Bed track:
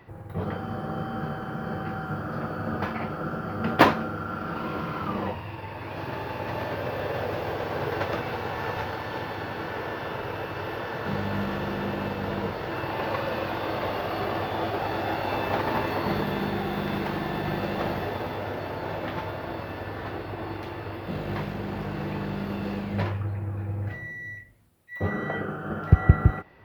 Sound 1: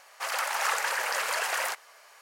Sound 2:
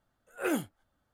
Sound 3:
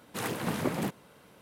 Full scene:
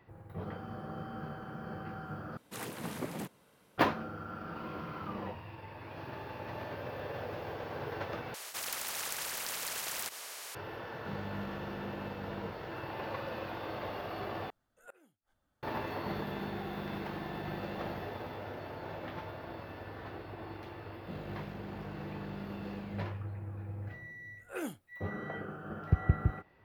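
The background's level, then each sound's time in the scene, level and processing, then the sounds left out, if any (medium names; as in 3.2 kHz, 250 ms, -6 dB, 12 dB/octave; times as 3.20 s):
bed track -10.5 dB
2.37 s: replace with 3 -8.5 dB + treble shelf 5.4 kHz +3.5 dB
8.34 s: replace with 1 -1.5 dB + spectrum-flattening compressor 4:1
14.50 s: replace with 2 -3.5 dB + inverted gate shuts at -35 dBFS, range -33 dB
24.11 s: add 2 -8.5 dB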